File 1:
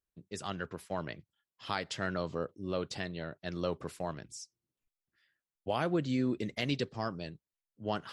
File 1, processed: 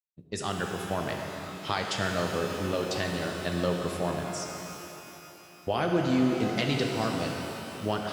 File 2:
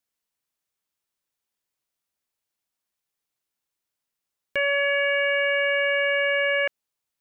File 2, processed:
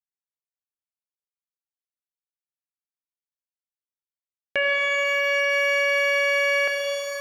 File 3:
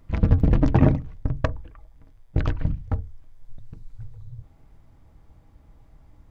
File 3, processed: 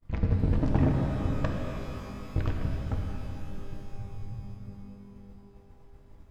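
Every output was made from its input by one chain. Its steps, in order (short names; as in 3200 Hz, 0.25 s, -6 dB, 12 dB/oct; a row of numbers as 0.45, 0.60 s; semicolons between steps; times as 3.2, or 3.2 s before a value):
expander -44 dBFS; compressor 1.5:1, threshold -40 dBFS; shimmer reverb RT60 3.3 s, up +12 st, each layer -8 dB, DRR 1.5 dB; normalise peaks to -12 dBFS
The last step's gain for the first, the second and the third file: +8.0, +7.0, +0.5 dB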